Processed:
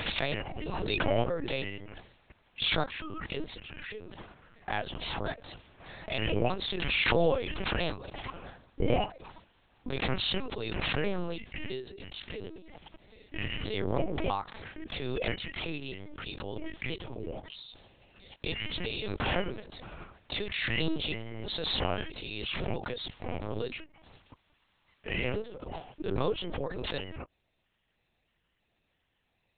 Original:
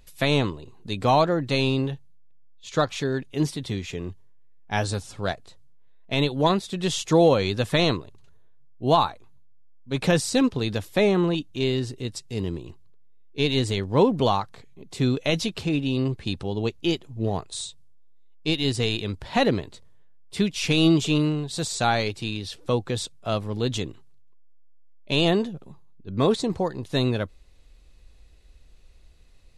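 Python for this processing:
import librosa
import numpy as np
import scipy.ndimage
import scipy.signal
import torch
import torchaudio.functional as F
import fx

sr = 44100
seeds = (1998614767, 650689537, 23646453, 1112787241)

y = fx.pitch_trill(x, sr, semitones=-5.0, every_ms=325)
y = scipy.signal.sosfilt(scipy.signal.butter(4, 340.0, 'highpass', fs=sr, output='sos'), y)
y = fx.lpc_vocoder(y, sr, seeds[0], excitation='pitch_kept', order=8)
y = fx.pre_swell(y, sr, db_per_s=22.0)
y = F.gain(torch.from_numpy(y), -7.5).numpy()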